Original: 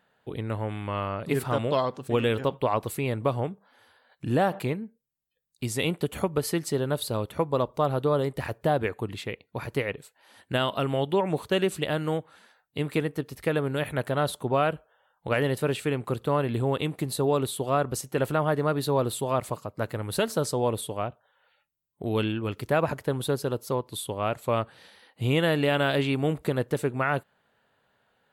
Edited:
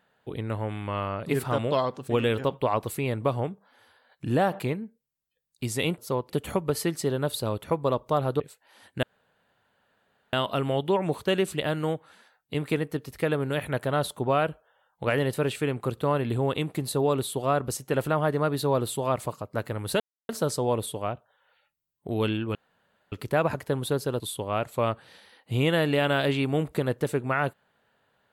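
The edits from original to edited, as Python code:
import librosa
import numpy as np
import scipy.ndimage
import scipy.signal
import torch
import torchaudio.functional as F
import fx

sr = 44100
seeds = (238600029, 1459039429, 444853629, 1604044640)

y = fx.edit(x, sr, fx.cut(start_s=8.08, length_s=1.86),
    fx.insert_room_tone(at_s=10.57, length_s=1.3),
    fx.insert_silence(at_s=20.24, length_s=0.29),
    fx.insert_room_tone(at_s=22.5, length_s=0.57),
    fx.move(start_s=23.58, length_s=0.32, to_s=5.98), tone=tone)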